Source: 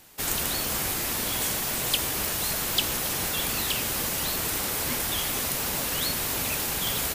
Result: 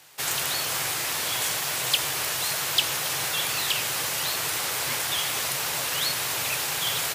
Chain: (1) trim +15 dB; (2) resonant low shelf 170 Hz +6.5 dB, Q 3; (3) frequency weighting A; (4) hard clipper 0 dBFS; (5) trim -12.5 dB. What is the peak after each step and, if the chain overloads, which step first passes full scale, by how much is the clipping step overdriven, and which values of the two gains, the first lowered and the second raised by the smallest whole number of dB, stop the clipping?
+7.5 dBFS, +7.5 dBFS, +5.0 dBFS, 0.0 dBFS, -12.5 dBFS; step 1, 5.0 dB; step 1 +10 dB, step 5 -7.5 dB

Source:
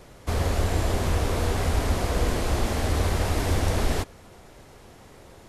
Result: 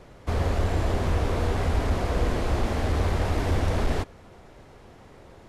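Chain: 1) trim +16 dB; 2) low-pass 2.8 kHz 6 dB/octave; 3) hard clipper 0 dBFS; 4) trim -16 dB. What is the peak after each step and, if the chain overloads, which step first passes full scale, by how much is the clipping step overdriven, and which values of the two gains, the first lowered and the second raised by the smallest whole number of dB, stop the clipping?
+5.0 dBFS, +5.0 dBFS, 0.0 dBFS, -16.0 dBFS; step 1, 5.0 dB; step 1 +11 dB, step 4 -11 dB

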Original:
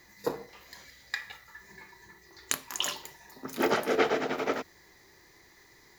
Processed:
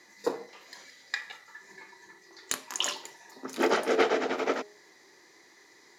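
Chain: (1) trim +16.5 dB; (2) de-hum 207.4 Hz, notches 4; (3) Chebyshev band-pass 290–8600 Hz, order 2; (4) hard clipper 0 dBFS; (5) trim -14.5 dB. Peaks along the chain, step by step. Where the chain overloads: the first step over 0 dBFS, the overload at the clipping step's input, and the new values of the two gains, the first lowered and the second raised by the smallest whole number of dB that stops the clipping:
+10.5 dBFS, +10.5 dBFS, +9.0 dBFS, 0.0 dBFS, -14.5 dBFS; step 1, 9.0 dB; step 1 +7.5 dB, step 5 -5.5 dB

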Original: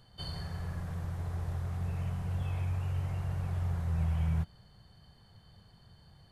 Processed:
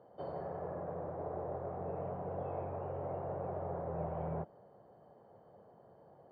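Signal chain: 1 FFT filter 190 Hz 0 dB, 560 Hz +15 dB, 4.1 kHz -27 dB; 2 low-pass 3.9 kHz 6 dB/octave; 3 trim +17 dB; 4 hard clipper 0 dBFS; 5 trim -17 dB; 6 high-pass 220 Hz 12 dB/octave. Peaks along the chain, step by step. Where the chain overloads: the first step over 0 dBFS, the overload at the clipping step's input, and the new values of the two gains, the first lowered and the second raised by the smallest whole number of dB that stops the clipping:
-19.0 dBFS, -19.0 dBFS, -2.0 dBFS, -2.0 dBFS, -19.0 dBFS, -26.0 dBFS; nothing clips

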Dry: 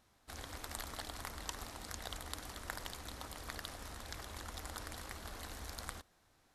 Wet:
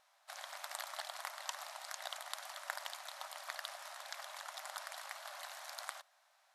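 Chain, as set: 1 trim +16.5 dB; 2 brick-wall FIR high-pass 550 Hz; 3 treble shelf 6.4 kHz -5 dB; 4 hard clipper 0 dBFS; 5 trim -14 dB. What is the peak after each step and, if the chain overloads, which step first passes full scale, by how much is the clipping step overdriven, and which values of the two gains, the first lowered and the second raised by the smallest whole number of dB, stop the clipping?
-2.5 dBFS, -2.5 dBFS, -4.0 dBFS, -4.0 dBFS, -18.0 dBFS; nothing clips

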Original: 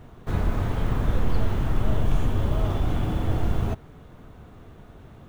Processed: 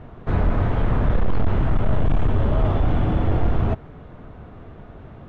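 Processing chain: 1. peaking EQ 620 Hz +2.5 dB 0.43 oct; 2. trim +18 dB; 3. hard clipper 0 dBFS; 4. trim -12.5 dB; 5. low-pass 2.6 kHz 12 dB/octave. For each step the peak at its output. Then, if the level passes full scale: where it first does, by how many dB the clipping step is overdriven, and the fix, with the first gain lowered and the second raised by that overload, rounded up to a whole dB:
-10.0 dBFS, +8.0 dBFS, 0.0 dBFS, -12.5 dBFS, -12.5 dBFS; step 2, 8.0 dB; step 2 +10 dB, step 4 -4.5 dB

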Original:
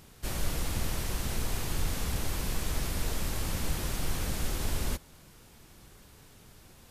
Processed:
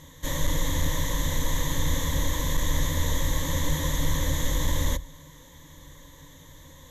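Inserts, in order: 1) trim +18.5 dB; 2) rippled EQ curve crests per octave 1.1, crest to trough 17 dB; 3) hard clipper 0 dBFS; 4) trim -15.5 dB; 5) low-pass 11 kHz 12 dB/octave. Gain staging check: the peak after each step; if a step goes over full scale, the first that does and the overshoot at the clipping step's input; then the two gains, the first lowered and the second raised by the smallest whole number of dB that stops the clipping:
+1.0 dBFS, +4.5 dBFS, 0.0 dBFS, -15.5 dBFS, -15.0 dBFS; step 1, 4.5 dB; step 1 +13.5 dB, step 4 -10.5 dB

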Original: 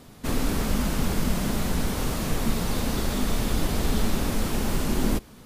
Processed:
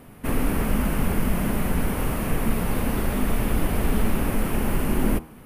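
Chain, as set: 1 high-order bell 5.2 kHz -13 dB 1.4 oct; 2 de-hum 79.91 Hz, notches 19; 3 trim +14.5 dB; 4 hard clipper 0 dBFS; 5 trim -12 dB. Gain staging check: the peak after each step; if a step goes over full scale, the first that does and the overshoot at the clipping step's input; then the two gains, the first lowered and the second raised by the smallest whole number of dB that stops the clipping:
-10.5 dBFS, -10.5 dBFS, +4.0 dBFS, 0.0 dBFS, -12.0 dBFS; step 3, 4.0 dB; step 3 +10.5 dB, step 5 -8 dB

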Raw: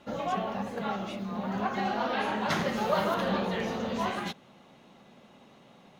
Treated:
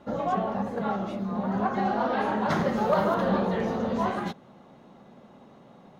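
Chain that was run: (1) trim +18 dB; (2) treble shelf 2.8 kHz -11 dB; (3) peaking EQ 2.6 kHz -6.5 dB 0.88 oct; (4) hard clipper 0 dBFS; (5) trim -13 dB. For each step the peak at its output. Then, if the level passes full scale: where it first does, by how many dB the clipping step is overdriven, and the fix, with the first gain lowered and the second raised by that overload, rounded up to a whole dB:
+4.5 dBFS, +3.5 dBFS, +3.0 dBFS, 0.0 dBFS, -13.0 dBFS; step 1, 3.0 dB; step 1 +15 dB, step 5 -10 dB

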